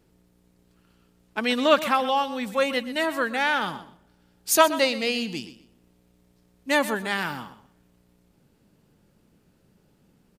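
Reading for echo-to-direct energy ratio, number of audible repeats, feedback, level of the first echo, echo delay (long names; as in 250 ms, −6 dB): −14.5 dB, 2, 21%, −14.5 dB, 125 ms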